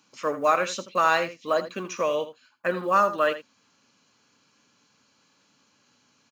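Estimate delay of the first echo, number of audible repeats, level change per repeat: 81 ms, 1, no steady repeat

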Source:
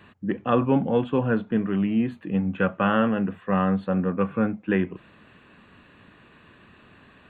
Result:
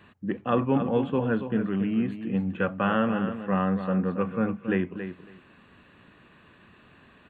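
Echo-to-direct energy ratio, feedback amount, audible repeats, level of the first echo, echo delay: -9.5 dB, 15%, 2, -9.5 dB, 0.277 s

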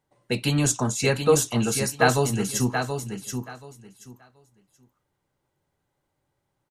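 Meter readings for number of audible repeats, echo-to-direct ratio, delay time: 2, -7.0 dB, 0.729 s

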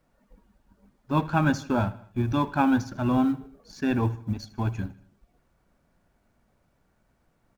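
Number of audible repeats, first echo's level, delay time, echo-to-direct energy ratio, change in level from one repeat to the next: 3, -19.0 dB, 78 ms, -17.5 dB, -5.0 dB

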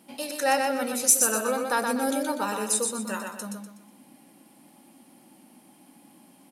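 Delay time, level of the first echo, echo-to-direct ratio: 0.123 s, -4.5 dB, -4.0 dB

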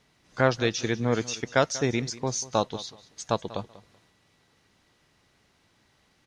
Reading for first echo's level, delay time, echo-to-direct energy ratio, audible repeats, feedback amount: -18.0 dB, 0.191 s, -18.0 dB, 2, 21%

